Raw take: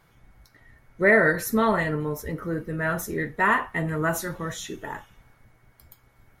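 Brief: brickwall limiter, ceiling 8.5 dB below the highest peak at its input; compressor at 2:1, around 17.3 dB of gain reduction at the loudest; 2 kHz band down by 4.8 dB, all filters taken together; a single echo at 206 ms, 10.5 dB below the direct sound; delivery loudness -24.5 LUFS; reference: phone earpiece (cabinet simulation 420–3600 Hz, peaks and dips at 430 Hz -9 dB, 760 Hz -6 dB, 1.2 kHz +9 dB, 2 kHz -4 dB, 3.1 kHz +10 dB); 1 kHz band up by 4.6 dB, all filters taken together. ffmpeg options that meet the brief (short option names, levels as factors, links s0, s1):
-af "equalizer=f=1000:t=o:g=3.5,equalizer=f=2000:t=o:g=-6.5,acompressor=threshold=0.00398:ratio=2,alimiter=level_in=2.99:limit=0.0631:level=0:latency=1,volume=0.335,highpass=420,equalizer=f=430:t=q:w=4:g=-9,equalizer=f=760:t=q:w=4:g=-6,equalizer=f=1200:t=q:w=4:g=9,equalizer=f=2000:t=q:w=4:g=-4,equalizer=f=3100:t=q:w=4:g=10,lowpass=f=3600:w=0.5412,lowpass=f=3600:w=1.3066,aecho=1:1:206:0.299,volume=11.2"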